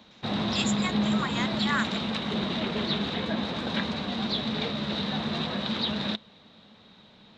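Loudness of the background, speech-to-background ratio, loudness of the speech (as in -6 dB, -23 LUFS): -29.0 LUFS, -3.5 dB, -32.5 LUFS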